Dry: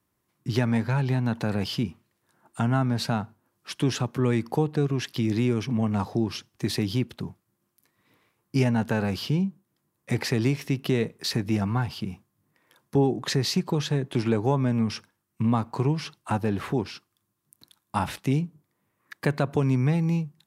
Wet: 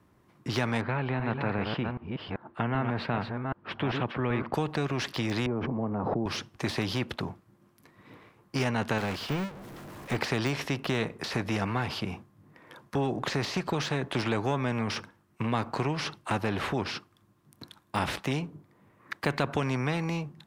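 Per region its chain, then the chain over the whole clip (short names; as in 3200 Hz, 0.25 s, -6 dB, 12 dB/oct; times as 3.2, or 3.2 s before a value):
0.81–4.54 reverse delay 0.388 s, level -7 dB + air absorption 460 m
5.46–6.26 block floating point 7-bit + Butterworth band-pass 290 Hz, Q 0.56 + backwards sustainer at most 46 dB/s
8.98–10.16 zero-crossing step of -28 dBFS + upward expander 2.5:1, over -33 dBFS
whole clip: de-esser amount 85%; LPF 1500 Hz 6 dB/oct; spectral compressor 2:1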